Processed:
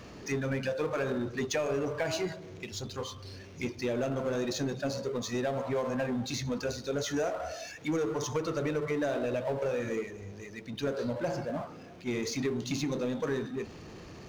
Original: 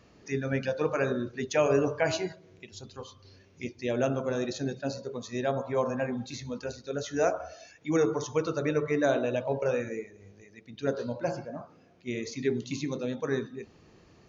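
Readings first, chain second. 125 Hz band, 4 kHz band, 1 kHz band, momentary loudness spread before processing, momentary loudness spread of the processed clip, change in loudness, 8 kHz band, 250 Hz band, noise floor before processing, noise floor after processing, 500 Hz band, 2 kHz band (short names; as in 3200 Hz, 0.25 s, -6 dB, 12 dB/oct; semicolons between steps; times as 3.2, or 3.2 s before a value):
-1.0 dB, +2.5 dB, -3.0 dB, 17 LU, 9 LU, -2.5 dB, n/a, -1.0 dB, -59 dBFS, -48 dBFS, -3.0 dB, -2.0 dB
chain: compressor, threshold -31 dBFS, peak gain reduction 11.5 dB; power-law curve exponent 0.7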